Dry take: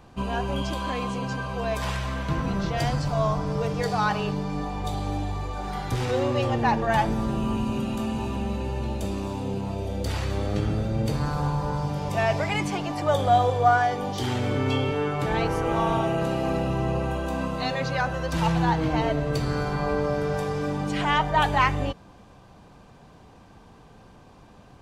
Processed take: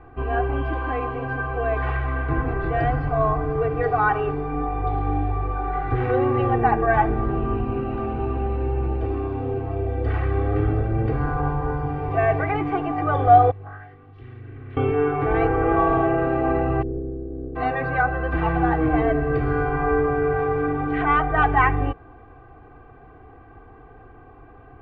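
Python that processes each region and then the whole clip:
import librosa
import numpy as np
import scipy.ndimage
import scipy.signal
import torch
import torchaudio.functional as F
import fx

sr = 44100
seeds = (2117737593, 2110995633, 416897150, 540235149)

y = fx.chain(x, sr, fx.tone_stack(knobs='6-0-2'),
    fx.doppler_dist(depth_ms=0.75), at=(13.51, 14.77))
y = fx.spec_flatten(y, sr, power=0.26, at=(16.81, 17.55), fade=0.02)
y = fx.cheby2_lowpass(y, sr, hz=890.0, order=4, stop_db=40, at=(16.81, 17.55), fade=0.02)
y = scipy.signal.sosfilt(scipy.signal.butter(4, 2000.0, 'lowpass', fs=sr, output='sos'), y)
y = fx.notch(y, sr, hz=900.0, q=11.0)
y = y + 0.98 * np.pad(y, (int(2.6 * sr / 1000.0), 0))[:len(y)]
y = y * 10.0 ** (2.0 / 20.0)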